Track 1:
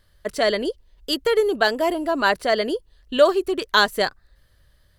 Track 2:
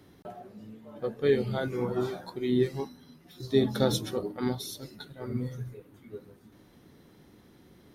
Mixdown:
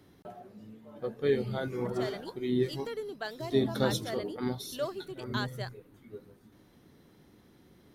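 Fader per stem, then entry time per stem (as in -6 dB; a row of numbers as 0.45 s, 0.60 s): -19.0 dB, -3.0 dB; 1.60 s, 0.00 s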